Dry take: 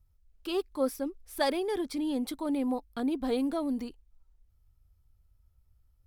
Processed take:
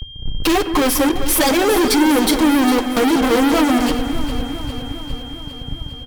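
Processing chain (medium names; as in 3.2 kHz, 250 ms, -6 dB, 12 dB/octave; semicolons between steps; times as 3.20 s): spectral gate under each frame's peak -30 dB strong; comb 3.9 ms, depth 62%; compression 2:1, threshold -42 dBFS, peak gain reduction 12.5 dB; flange 0.43 Hz, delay 4.9 ms, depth 9.4 ms, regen -2%; fuzz box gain 65 dB, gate -58 dBFS; echo whose repeats swap between lows and highs 202 ms, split 1.9 kHz, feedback 80%, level -9.5 dB; whistle 3.2 kHz -32 dBFS; simulated room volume 3300 m³, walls mixed, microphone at 0.53 m; trim -1 dB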